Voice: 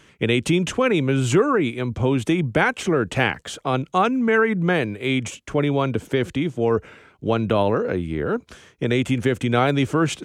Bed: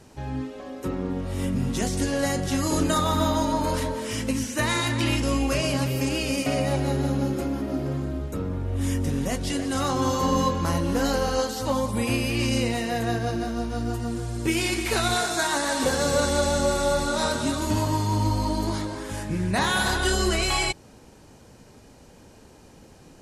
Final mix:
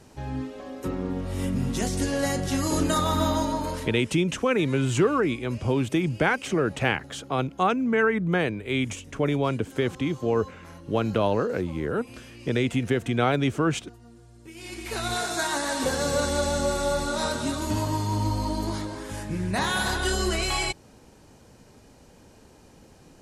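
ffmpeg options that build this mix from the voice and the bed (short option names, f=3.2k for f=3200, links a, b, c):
-filter_complex "[0:a]adelay=3650,volume=-4dB[a];[1:a]volume=17.5dB,afade=t=out:st=3.35:d=0.8:silence=0.1,afade=t=in:st=14.54:d=0.78:silence=0.11885[b];[a][b]amix=inputs=2:normalize=0"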